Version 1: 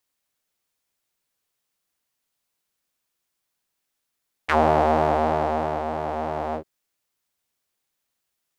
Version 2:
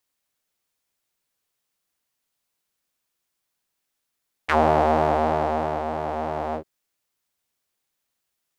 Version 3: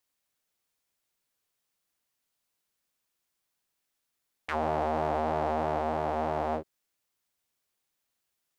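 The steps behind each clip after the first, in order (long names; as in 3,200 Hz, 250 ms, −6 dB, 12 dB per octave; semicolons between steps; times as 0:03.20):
no processing that can be heard
brickwall limiter −15.5 dBFS, peak gain reduction 10 dB; level −2.5 dB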